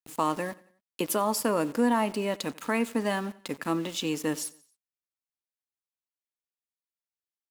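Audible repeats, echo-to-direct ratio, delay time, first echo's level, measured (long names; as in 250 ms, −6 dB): 2, −21.0 dB, 90 ms, −22.0 dB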